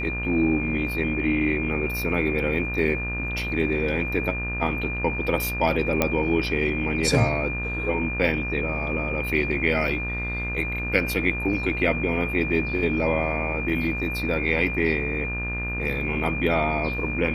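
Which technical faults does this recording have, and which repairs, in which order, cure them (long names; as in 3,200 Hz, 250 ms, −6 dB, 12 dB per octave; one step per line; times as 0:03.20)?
mains buzz 60 Hz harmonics 32 −31 dBFS
whistle 2,400 Hz −29 dBFS
0:06.02: click −6 dBFS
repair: click removal
hum removal 60 Hz, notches 32
notch filter 2,400 Hz, Q 30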